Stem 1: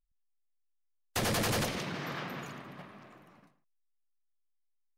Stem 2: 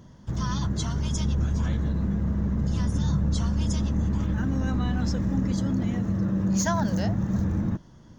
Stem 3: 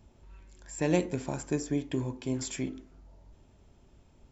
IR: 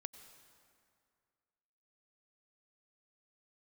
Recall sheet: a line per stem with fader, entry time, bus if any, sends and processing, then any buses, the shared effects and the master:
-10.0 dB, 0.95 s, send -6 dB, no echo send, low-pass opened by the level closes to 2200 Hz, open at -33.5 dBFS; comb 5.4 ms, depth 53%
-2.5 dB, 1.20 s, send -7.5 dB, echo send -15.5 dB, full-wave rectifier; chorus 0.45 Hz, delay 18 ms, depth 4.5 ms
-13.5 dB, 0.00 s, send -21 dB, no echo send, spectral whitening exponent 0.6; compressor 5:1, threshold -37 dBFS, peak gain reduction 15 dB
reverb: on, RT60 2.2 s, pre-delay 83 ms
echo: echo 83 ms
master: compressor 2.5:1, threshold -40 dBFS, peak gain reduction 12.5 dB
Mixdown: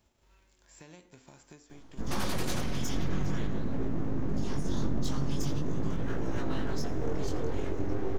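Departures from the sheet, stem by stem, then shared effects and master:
stem 2: entry 1.20 s -> 1.70 s; master: missing compressor 2.5:1, threshold -40 dBFS, peak gain reduction 12.5 dB

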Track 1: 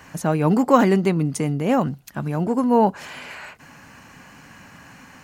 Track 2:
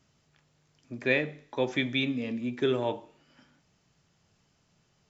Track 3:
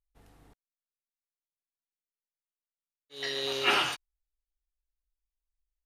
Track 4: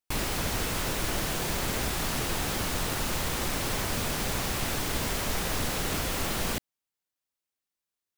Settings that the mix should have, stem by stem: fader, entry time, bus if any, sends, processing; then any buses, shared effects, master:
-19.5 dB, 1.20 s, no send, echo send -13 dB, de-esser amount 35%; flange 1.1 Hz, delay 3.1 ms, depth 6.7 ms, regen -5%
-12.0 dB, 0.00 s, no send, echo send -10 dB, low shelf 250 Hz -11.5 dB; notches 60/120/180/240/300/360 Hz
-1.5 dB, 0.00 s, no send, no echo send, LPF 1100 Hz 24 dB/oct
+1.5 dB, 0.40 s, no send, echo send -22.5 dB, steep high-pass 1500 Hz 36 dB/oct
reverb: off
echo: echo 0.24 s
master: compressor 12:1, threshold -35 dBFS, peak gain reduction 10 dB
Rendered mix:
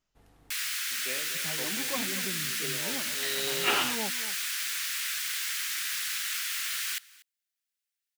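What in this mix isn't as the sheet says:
stem 3: missing LPF 1100 Hz 24 dB/oct; master: missing compressor 12:1, threshold -35 dBFS, peak gain reduction 10 dB

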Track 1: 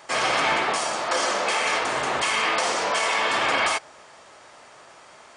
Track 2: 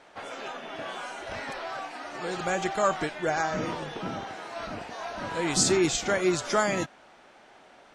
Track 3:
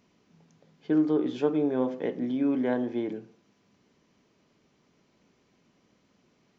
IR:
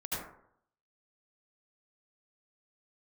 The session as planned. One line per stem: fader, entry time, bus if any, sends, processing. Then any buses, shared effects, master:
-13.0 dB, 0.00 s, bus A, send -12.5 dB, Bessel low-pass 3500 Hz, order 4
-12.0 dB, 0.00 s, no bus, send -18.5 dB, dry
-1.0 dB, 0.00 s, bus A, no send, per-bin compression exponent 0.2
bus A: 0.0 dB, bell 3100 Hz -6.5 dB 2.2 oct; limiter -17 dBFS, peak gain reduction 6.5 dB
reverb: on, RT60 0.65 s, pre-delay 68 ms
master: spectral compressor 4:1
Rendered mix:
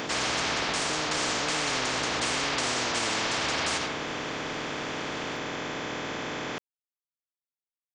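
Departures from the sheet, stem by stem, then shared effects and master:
stem 1 -13.0 dB -> -4.5 dB; stem 2: muted; stem 3 -1.0 dB -> -8.5 dB

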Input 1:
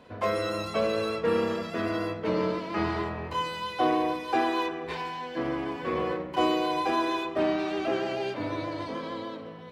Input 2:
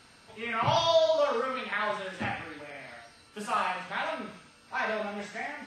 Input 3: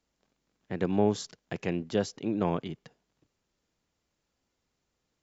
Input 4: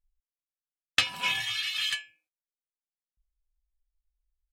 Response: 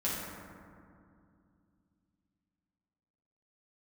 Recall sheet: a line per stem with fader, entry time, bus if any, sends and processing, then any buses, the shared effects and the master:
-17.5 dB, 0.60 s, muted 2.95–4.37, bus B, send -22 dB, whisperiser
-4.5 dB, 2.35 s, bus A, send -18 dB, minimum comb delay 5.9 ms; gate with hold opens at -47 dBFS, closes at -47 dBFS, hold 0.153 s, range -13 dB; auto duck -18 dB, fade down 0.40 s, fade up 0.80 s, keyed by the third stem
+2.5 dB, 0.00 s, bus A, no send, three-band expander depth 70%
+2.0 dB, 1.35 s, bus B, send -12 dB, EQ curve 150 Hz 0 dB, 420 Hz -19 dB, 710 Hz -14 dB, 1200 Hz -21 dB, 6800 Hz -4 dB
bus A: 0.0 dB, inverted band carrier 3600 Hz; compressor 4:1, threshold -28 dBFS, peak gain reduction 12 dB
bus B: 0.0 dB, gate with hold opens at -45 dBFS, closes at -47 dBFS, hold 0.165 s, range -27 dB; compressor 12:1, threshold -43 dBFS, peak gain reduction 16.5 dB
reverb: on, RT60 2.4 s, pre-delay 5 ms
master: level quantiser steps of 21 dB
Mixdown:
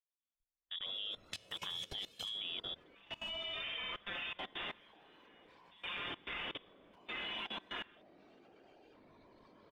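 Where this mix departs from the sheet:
stem 4: entry 1.35 s -> 0.35 s; reverb return -6.0 dB

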